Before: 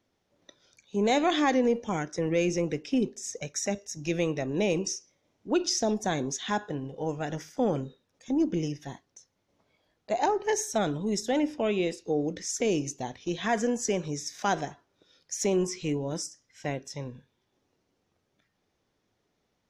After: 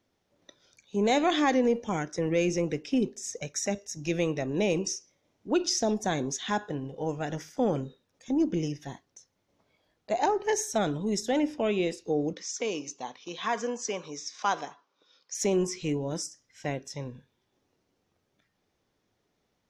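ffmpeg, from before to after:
ffmpeg -i in.wav -filter_complex "[0:a]asettb=1/sr,asplit=3[link_01][link_02][link_03];[link_01]atrim=end=12.334[link_04];[link_02]atrim=start=12.33:end=15.35,asetpts=PTS-STARTPTS,afade=type=in:duration=0.004:curve=qsin,afade=type=out:start_time=3.016:duration=0.004:curve=qsin,highpass=350,equalizer=frequency=360:width_type=q:width=4:gain=-7,equalizer=frequency=650:width_type=q:width=4:gain=-6,equalizer=frequency=1100:width_type=q:width=4:gain=8,equalizer=frequency=1800:width_type=q:width=4:gain=-5,lowpass=frequency=6400:width=0.5412,lowpass=frequency=6400:width=1.3066[link_05];[link_03]atrim=start=15.346[link_06];[link_04][link_05]acrossfade=duration=0.004:curve1=hsin:curve2=qsin[link_07];[link_07][link_06]acrossfade=duration=0.004:curve1=qsin:curve2=hsin" out.wav

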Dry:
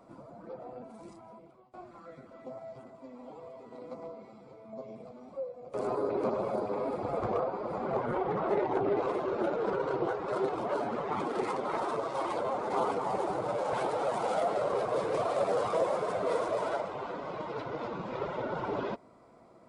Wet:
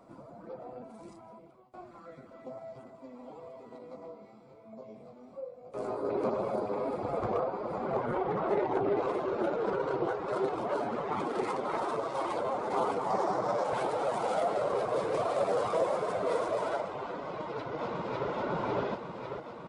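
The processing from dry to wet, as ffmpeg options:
ffmpeg -i in.wav -filter_complex "[0:a]asettb=1/sr,asplit=3[link_01][link_02][link_03];[link_01]atrim=end=3.784[link_04];[link_02]atrim=start=3.78:end=6.05,asetpts=PTS-STARTPTS,afade=type=in:duration=0.004:curve=qsin,afade=type=out:start_time=2.266:duration=0.004:curve=qsin,flanger=delay=17.5:depth=6.9:speed=1[link_05];[link_03]atrim=start=6.046[link_06];[link_04][link_05]acrossfade=duration=0.004:curve1=hsin:curve2=qsin[link_07];[link_07][link_06]acrossfade=duration=0.004:curve1=qsin:curve2=hsin,asettb=1/sr,asplit=3[link_08][link_09][link_10];[link_08]atrim=end=13.104[link_11];[link_09]atrim=start=13.1:end=13.64,asetpts=PTS-STARTPTS,afade=type=in:duration=0.004:curve=qsin,afade=type=out:start_time=0.536:duration=0.004:curve=qsin,highpass=100,equalizer=frequency=210:width_type=q:width=4:gain=4,equalizer=frequency=690:width_type=q:width=4:gain=4,equalizer=frequency=1100:width_type=q:width=4:gain=6,equalizer=frequency=1800:width_type=q:width=4:gain=4,equalizer=frequency=2700:width_type=q:width=4:gain=-5,equalizer=frequency=5500:width_type=q:width=4:gain=9,lowpass=frequency=8700:width=0.5412,lowpass=frequency=8700:width=1.3066[link_12];[link_10]atrim=start=13.636[link_13];[link_11][link_12]acrossfade=duration=0.004:curve1=hsin:curve2=qsin[link_14];[link_14][link_13]acrossfade=duration=0.004:curve1=qsin:curve2=hsin,asplit=2[link_15][link_16];[link_16]afade=type=in:start_time=17.23:duration=0.01,afade=type=out:start_time=18.29:duration=0.01,aecho=0:1:550|1100|1650|2200|2750|3300|3850|4400|4950|5500|6050:0.891251|0.579313|0.376554|0.24476|0.159094|0.103411|0.0672172|0.0436912|0.0283992|0.0184595|0.0119987[link_17];[link_15][link_17]amix=inputs=2:normalize=0" out.wav

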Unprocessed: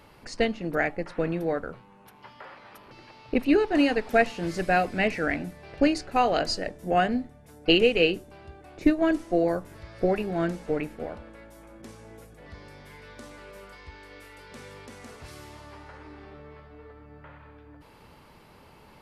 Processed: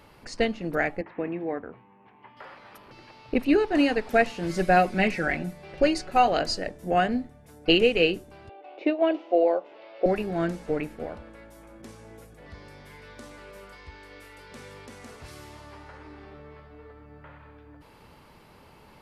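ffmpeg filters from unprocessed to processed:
ffmpeg -i in.wav -filter_complex "[0:a]asettb=1/sr,asplit=3[link_01][link_02][link_03];[link_01]atrim=end=1.014[link_04];[link_02]atrim=start=1.01:end=2.37,asetpts=PTS-STARTPTS,afade=type=in:duration=0.004:curve=qsin,afade=type=out:start_time=1.356:duration=0.004:curve=qsin,highpass=110,equalizer=frequency=160:width_type=q:width=4:gain=-9,equalizer=frequency=550:width_type=q:width=4:gain=-8,equalizer=frequency=1400:width_type=q:width=4:gain=-10,lowpass=frequency=2500:width=0.5412,lowpass=frequency=2500:width=1.3066[link_05];[link_03]atrim=start=2.366[link_06];[link_04][link_05]acrossfade=duration=0.004:curve1=hsin:curve2=qsin[link_07];[link_07][link_06]acrossfade=duration=0.004:curve1=qsin:curve2=hsin,asettb=1/sr,asplit=3[link_08][link_09][link_10];[link_08]atrim=end=4.494[link_11];[link_09]atrim=start=4.49:end=6.28,asetpts=PTS-STARTPTS,afade=type=in:duration=0.004:curve=qsin,afade=type=out:start_time=1.786:duration=0.004:curve=qsin,aecho=1:1:5.4:0.65,atrim=end_sample=78939[link_12];[link_10]atrim=start=6.276[link_13];[link_11][link_12]acrossfade=duration=0.004:curve1=hsin:curve2=qsin[link_14];[link_14][link_13]acrossfade=duration=0.004:curve1=qsin:curve2=hsin,asettb=1/sr,asplit=3[link_15][link_16][link_17];[link_15]atrim=end=8.494[link_18];[link_16]atrim=start=8.49:end=10.06,asetpts=PTS-STARTPTS,afade=type=in:duration=0.004:curve=qsin,afade=type=out:start_time=1.566:duration=0.004:curve=qsin,highpass=frequency=340:width=0.5412,highpass=frequency=340:width=1.3066,equalizer=frequency=550:width_type=q:width=4:gain=6,equalizer=frequency=780:width_type=q:width=4:gain=6,equalizer=frequency=1200:width_type=q:width=4:gain=-3,equalizer=frequency=1700:width_type=q:width=4:gain=-8,equalizer=frequency=2800:width_type=q:width=4:gain=6,lowpass=frequency=3700:width=0.5412,lowpass=frequency=3700:width=1.3066[link_19];[link_17]atrim=start=10.056[link_20];[link_18][link_19]acrossfade=duration=0.004:curve1=hsin:curve2=qsin[link_21];[link_21][link_20]acrossfade=duration=0.004:curve1=qsin:curve2=hsin" out.wav

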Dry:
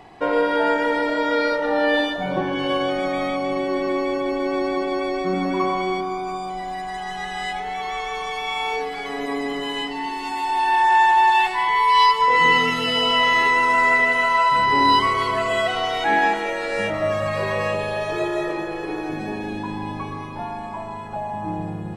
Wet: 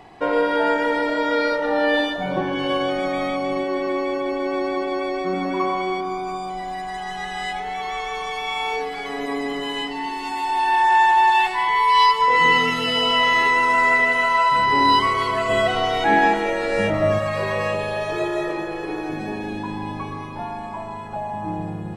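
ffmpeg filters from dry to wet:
ffmpeg -i in.wav -filter_complex "[0:a]asettb=1/sr,asplit=3[link_01][link_02][link_03];[link_01]atrim=end=3.634[link_04];[link_02]atrim=start=3.63:end=6.05,asetpts=PTS-STARTPTS,afade=type=in:duration=0.004:curve=qsin,afade=type=out:start_time=2.416:duration=0.004:curve=qsin,bass=frequency=250:gain=-5,treble=frequency=4000:gain=-3[link_05];[link_03]atrim=start=6.046[link_06];[link_04][link_05]acrossfade=duration=0.004:curve1=hsin:curve2=qsin[link_07];[link_07][link_06]acrossfade=duration=0.004:curve1=qsin:curve2=hsin,asettb=1/sr,asplit=3[link_08][link_09][link_10];[link_08]atrim=end=15.494[link_11];[link_09]atrim=start=15.49:end=17.19,asetpts=PTS-STARTPTS,afade=type=in:duration=0.004:curve=qsin,afade=type=out:start_time=1.696:duration=0.004:curve=qsin,lowshelf=frequency=470:gain=8[link_12];[link_10]atrim=start=17.186[link_13];[link_11][link_12]acrossfade=duration=0.004:curve1=hsin:curve2=qsin[link_14];[link_14][link_13]acrossfade=duration=0.004:curve1=qsin:curve2=hsin" out.wav

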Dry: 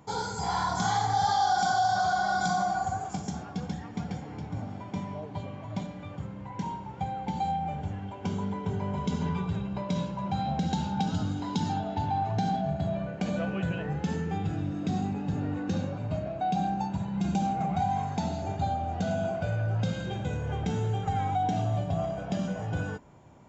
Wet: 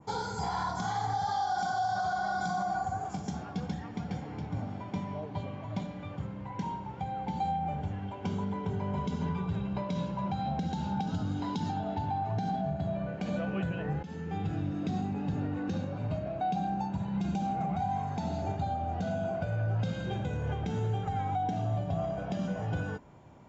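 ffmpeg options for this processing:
ffmpeg -i in.wav -filter_complex "[0:a]asplit=2[link_01][link_02];[link_01]atrim=end=14.03,asetpts=PTS-STARTPTS,afade=type=out:start_time=14.026:duration=0.004:curve=hsin:silence=0.158489[link_03];[link_02]atrim=start=14.03,asetpts=PTS-STARTPTS,afade=type=in:duration=0.53:silence=0.158489[link_04];[link_03][link_04]concat=n=2:v=0:a=1,lowpass=6000,adynamicequalizer=threshold=0.00447:dfrequency=3400:dqfactor=0.77:tfrequency=3400:tqfactor=0.77:attack=5:release=100:ratio=0.375:range=2:mode=cutabove:tftype=bell,alimiter=limit=-23.5dB:level=0:latency=1:release=197" out.wav

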